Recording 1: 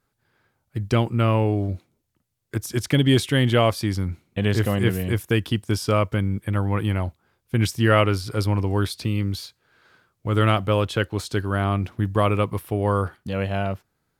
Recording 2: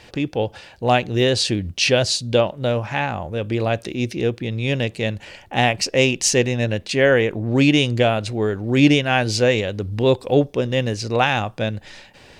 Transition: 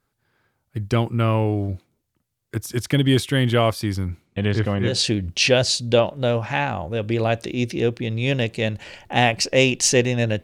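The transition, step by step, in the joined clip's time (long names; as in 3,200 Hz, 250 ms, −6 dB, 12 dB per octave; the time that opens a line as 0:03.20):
recording 1
0:04.25–0:05.00: low-pass filter 10,000 Hz → 1,900 Hz
0:04.91: continue with recording 2 from 0:01.32, crossfade 0.18 s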